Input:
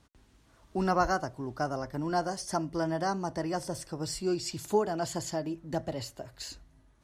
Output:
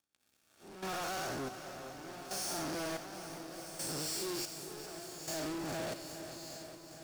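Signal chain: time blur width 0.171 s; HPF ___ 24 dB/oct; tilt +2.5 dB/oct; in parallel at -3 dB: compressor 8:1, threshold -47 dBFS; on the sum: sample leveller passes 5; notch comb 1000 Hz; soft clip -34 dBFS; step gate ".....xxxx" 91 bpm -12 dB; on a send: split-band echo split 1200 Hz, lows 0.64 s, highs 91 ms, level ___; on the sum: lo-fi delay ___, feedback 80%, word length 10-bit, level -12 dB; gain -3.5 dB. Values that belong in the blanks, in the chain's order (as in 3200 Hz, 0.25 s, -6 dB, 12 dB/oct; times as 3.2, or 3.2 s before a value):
54 Hz, -14.5 dB, 0.408 s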